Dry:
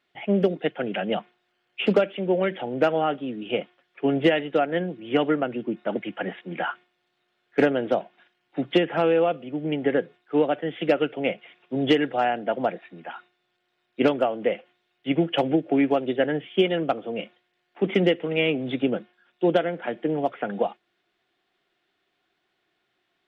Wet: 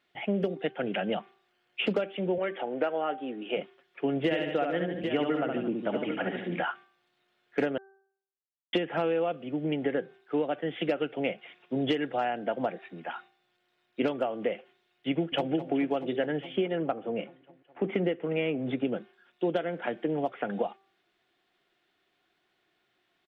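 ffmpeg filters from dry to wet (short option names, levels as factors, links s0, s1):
-filter_complex "[0:a]asettb=1/sr,asplit=3[s0][s1][s2];[s0]atrim=end=2.384[s3];[s1]atrim=start=2.38:end=3.57,asetpts=PTS-STARTPTS,afade=t=in:d=0.004:c=qsin,afade=t=out:st=1.186:d=0.004:c=qsin,highpass=330,lowpass=2800[s4];[s2]atrim=start=3.566[s5];[s3][s4]acrossfade=d=0.004:c1=hsin:c2=qsin[s6];[s6][s5]acrossfade=d=0.004:c1=qsin:c2=hsin,asettb=1/sr,asplit=3[s7][s8][s9];[s7]atrim=end=4.244[s10];[s8]atrim=start=4.24:end=6.6,asetpts=PTS-STARTPTS,afade=t=in:d=0.004:c=qsin,afade=t=out:st=2.356:d=0.004:c=qsin,aecho=1:1:68|149|222|793:0.562|0.282|0.119|0.237,atrim=end_sample=104076[s11];[s9]atrim=start=6.596[s12];[s10][s11]acrossfade=d=0.004:c1=hsin:c2=qsin[s13];[s13][s12]acrossfade=d=0.004:c1=qsin:c2=hsin,asplit=2[s14][s15];[s15]afade=t=in:st=15.11:d=0.01,afade=t=out:st=15.52:d=0.01,aecho=0:1:210|420|630|840|1050|1260|1470|1680|1890|2100|2310:0.211349|0.158512|0.118884|0.0891628|0.0668721|0.0501541|0.0376156|0.0282117|0.0211588|0.0158691|0.0119018[s16];[s14][s16]amix=inputs=2:normalize=0,asettb=1/sr,asplit=3[s17][s18][s19];[s17]atrim=end=16.574[s20];[s18]atrim=start=16.57:end=18.85,asetpts=PTS-STARTPTS,afade=t=in:d=0.004:c=qsin,afade=t=out:st=2.276:d=0.004:c=qsin,lowpass=2200[s21];[s19]atrim=start=18.846[s22];[s20][s21]acrossfade=d=0.004:c1=hsin:c2=qsin[s23];[s23][s22]acrossfade=d=0.004:c1=qsin:c2=hsin,asplit=3[s24][s25][s26];[s24]atrim=end=7.78,asetpts=PTS-STARTPTS,afade=t=out:st=7.776:d=0.004:c=hsin[s27];[s25]atrim=start=7.78:end=8.73,asetpts=PTS-STARTPTS,volume=0[s28];[s26]atrim=start=8.73,asetpts=PTS-STARTPTS,afade=t=in:d=0.004:c=hsin[s29];[s27][s28][s29]concat=n=3:v=0:a=1,bandreject=f=389.2:t=h:w=4,bandreject=f=778.4:t=h:w=4,bandreject=f=1167.6:t=h:w=4,bandreject=f=1556.8:t=h:w=4,acompressor=threshold=0.0398:ratio=2.5"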